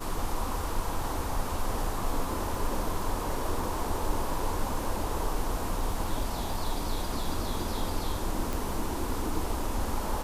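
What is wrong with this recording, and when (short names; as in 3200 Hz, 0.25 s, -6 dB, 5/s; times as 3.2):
crackle 13/s -35 dBFS
8.53 pop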